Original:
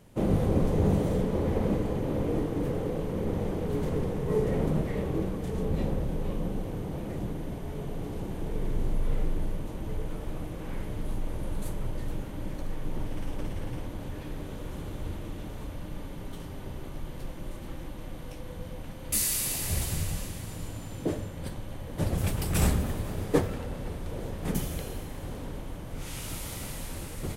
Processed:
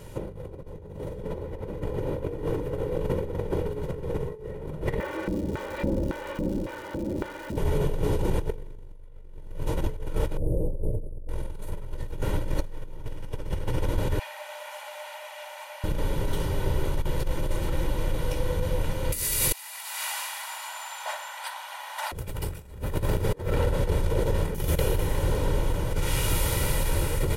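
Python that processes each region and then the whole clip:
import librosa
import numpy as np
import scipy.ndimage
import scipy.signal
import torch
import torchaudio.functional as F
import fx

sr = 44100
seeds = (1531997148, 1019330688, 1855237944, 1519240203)

y = fx.comb(x, sr, ms=3.4, depth=0.72, at=(4.98, 7.56), fade=0.02)
y = fx.filter_lfo_bandpass(y, sr, shape='square', hz=1.8, low_hz=220.0, high_hz=1600.0, q=1.5, at=(4.98, 7.56), fade=0.02)
y = fx.dmg_crackle(y, sr, seeds[0], per_s=250.0, level_db=-47.0, at=(4.98, 7.56), fade=0.02)
y = fx.chain(y, sr, fx.ellip_bandstop(low_hz=590.0, high_hz=9000.0, order=3, stop_db=50),
    fx.high_shelf_res(hz=5100.0, db=-7.0, q=1.5), at=(10.37, 11.29))
y = fx.chain(y, sr, fx.cheby_ripple_highpass(hz=580.0, ripple_db=6),
    fx.peak_eq(hz=3600.0, db=-3.5, octaves=0.21), at=(14.19, 15.84))
y = fx.chain(y, sr, fx.steep_highpass(hz=690.0, slope=72),
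    fx.high_shelf(hz=5400.0, db=-5.5),
    fx.over_compress(threshold_db=-43.0, ratio=-0.5), at=(19.52, 22.12))
y = y + 0.6 * np.pad(y, (int(2.1 * sr / 1000.0), 0))[:len(y)]
y = fx.dynamic_eq(y, sr, hz=6700.0, q=0.72, threshold_db=-52.0, ratio=4.0, max_db=-5)
y = fx.over_compress(y, sr, threshold_db=-32.0, ratio=-0.5)
y = F.gain(torch.from_numpy(y), 6.0).numpy()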